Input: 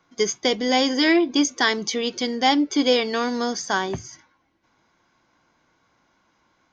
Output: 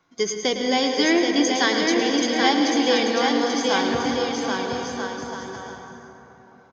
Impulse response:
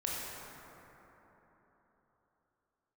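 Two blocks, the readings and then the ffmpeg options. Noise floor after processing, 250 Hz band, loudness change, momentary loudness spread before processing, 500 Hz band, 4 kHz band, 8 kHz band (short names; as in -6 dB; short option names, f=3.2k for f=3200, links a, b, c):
-50 dBFS, +1.0 dB, 0.0 dB, 7 LU, +2.0 dB, +1.0 dB, n/a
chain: -filter_complex "[0:a]aecho=1:1:780|1287|1617|1831|1970:0.631|0.398|0.251|0.158|0.1,asplit=2[a][b];[1:a]atrim=start_sample=2205,adelay=107[c];[b][c]afir=irnorm=-1:irlink=0,volume=-8.5dB[d];[a][d]amix=inputs=2:normalize=0,volume=-2dB"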